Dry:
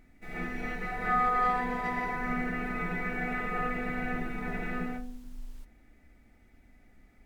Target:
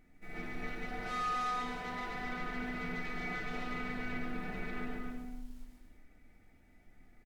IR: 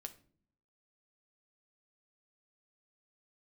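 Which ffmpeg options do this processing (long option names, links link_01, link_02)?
-filter_complex "[0:a]asoftclip=type=tanh:threshold=-32dB,aecho=1:1:140|245|323.8|382.8|427.1:0.631|0.398|0.251|0.158|0.1[link_01];[1:a]atrim=start_sample=2205[link_02];[link_01][link_02]afir=irnorm=-1:irlink=0"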